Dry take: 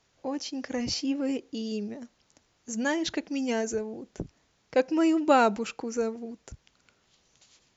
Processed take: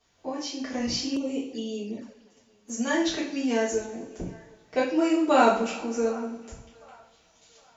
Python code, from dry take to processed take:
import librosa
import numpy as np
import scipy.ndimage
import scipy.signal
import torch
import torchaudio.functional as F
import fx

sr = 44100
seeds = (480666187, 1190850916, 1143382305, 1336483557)

y = fx.echo_wet_bandpass(x, sr, ms=758, feedback_pct=33, hz=1200.0, wet_db=-20.5)
y = fx.rev_double_slope(y, sr, seeds[0], early_s=0.47, late_s=1.8, knee_db=-18, drr_db=-9.0)
y = fx.env_flanger(y, sr, rest_ms=11.7, full_db=-22.5, at=(1.16, 2.7))
y = F.gain(torch.from_numpy(y), -7.0).numpy()